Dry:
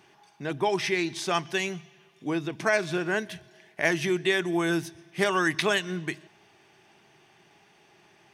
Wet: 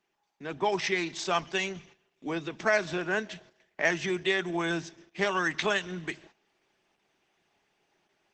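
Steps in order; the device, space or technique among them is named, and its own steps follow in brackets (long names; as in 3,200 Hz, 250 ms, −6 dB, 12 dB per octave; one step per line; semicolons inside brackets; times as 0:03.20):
dynamic equaliser 320 Hz, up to −5 dB, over −40 dBFS, Q 2.8
noise gate −52 dBFS, range −13 dB
high-pass filter 110 Hz 12 dB per octave
video call (high-pass filter 160 Hz 24 dB per octave; automatic gain control gain up to 7 dB; level −7 dB; Opus 12 kbit/s 48,000 Hz)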